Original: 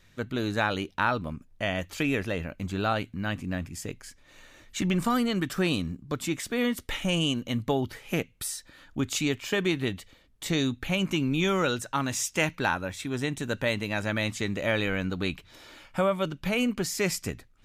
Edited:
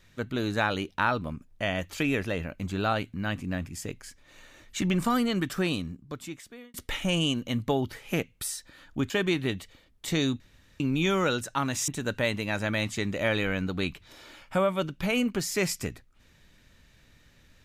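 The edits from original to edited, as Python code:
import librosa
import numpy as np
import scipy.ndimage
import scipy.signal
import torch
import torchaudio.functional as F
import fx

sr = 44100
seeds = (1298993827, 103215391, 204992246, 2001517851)

y = fx.edit(x, sr, fx.fade_out_span(start_s=5.43, length_s=1.31),
    fx.cut(start_s=9.1, length_s=0.38),
    fx.room_tone_fill(start_s=10.78, length_s=0.4),
    fx.cut(start_s=12.26, length_s=1.05), tone=tone)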